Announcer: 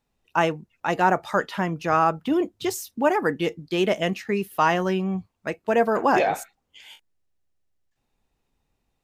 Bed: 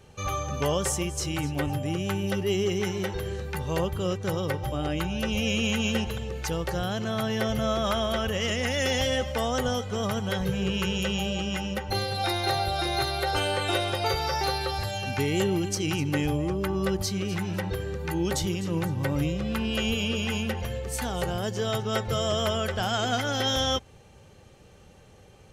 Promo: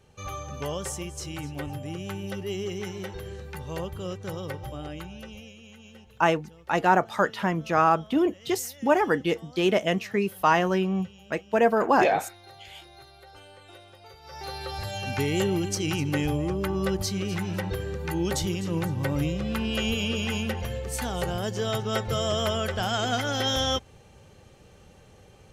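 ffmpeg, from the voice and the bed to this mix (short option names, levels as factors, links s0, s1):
-filter_complex "[0:a]adelay=5850,volume=0.944[s0];[1:a]volume=7.08,afade=t=out:st=4.64:d=0.9:silence=0.141254,afade=t=in:st=14.22:d=0.92:silence=0.0707946[s1];[s0][s1]amix=inputs=2:normalize=0"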